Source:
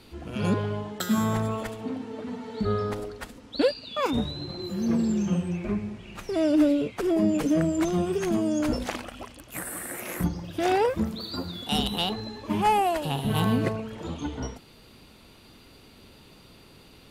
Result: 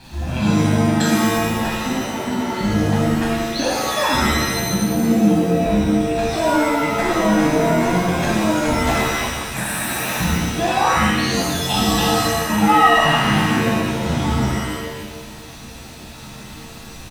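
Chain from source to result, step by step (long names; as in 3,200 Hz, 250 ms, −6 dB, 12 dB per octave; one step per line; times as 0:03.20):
low-pass filter 8,900 Hz
comb filter 1.2 ms, depth 94%
downward compressor, threshold −26 dBFS, peak gain reduction 12 dB
surface crackle 360 per second −44 dBFS
reverb with rising layers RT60 1.2 s, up +7 semitones, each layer −2 dB, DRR −5.5 dB
level +3.5 dB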